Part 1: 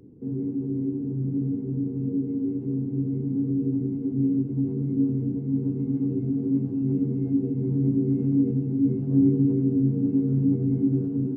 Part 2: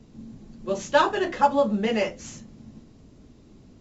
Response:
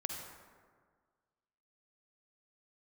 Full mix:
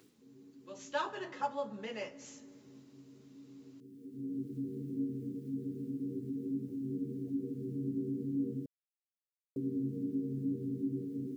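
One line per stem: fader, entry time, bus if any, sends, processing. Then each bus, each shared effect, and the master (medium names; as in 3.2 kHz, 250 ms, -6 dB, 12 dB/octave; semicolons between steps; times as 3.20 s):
-7.5 dB, 0.00 s, muted 8.66–9.56 s, no send, spectral gate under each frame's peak -30 dB strong; bit crusher 11-bit; auto duck -17 dB, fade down 0.25 s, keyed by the second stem
0.67 s -23 dB -> 0.94 s -16 dB, 0.00 s, send -13 dB, band-stop 730 Hz, Q 12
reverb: on, RT60 1.7 s, pre-delay 43 ms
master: high-pass 410 Hz 6 dB/octave; tape noise reduction on one side only encoder only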